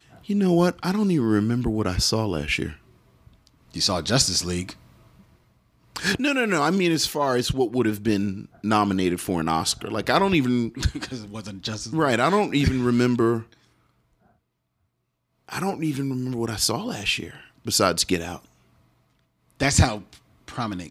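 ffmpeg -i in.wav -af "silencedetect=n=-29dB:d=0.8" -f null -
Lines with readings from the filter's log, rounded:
silence_start: 2.71
silence_end: 3.74 | silence_duration: 1.03
silence_start: 4.70
silence_end: 5.96 | silence_duration: 1.26
silence_start: 13.41
silence_end: 15.49 | silence_duration: 2.07
silence_start: 18.36
silence_end: 19.60 | silence_duration: 1.24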